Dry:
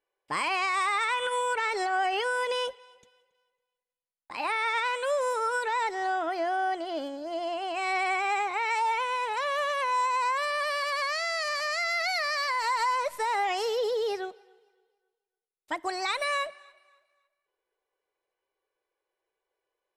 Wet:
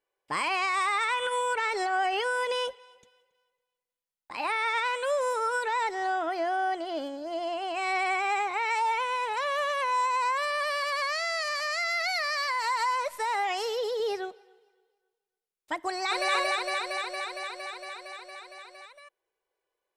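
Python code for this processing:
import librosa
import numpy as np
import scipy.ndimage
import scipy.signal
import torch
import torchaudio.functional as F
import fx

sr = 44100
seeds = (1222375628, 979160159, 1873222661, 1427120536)

y = fx.low_shelf(x, sr, hz=390.0, db=-6.0, at=(11.41, 14.0))
y = fx.echo_throw(y, sr, start_s=15.88, length_s=0.44, ms=230, feedback_pct=80, wet_db=-0.5)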